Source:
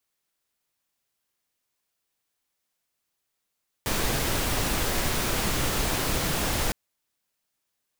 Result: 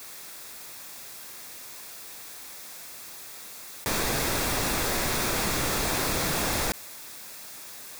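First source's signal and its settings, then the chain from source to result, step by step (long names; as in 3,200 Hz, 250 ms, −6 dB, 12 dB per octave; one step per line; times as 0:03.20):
noise pink, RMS −26 dBFS 2.86 s
low-shelf EQ 140 Hz −7 dB
notch filter 3,000 Hz, Q 7.5
envelope flattener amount 70%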